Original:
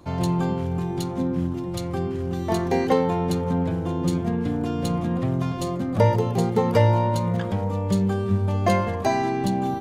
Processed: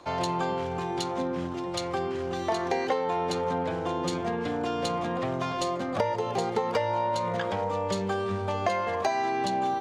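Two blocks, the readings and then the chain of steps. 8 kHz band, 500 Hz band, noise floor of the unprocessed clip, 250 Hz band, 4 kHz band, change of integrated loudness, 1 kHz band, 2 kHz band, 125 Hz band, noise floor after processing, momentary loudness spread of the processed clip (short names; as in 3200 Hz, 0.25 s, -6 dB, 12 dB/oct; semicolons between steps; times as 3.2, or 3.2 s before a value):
-1.5 dB, -3.5 dB, -29 dBFS, -9.5 dB, +1.0 dB, -5.5 dB, -0.5 dB, 0.0 dB, -14.0 dB, -33 dBFS, 3 LU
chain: three-band isolator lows -17 dB, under 420 Hz, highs -20 dB, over 7900 Hz; compressor 6:1, threshold -29 dBFS, peak gain reduction 11.5 dB; gain +5 dB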